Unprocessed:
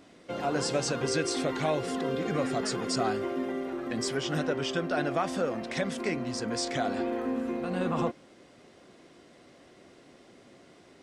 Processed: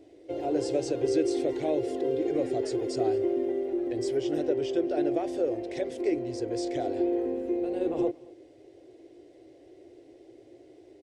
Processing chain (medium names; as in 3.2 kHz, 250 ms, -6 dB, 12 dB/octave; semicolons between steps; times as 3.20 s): FFT filter 120 Hz 0 dB, 200 Hz -26 dB, 320 Hz +9 dB, 770 Hz -4 dB, 1.2 kHz -21 dB, 2 kHz -9 dB; delay 224 ms -23.5 dB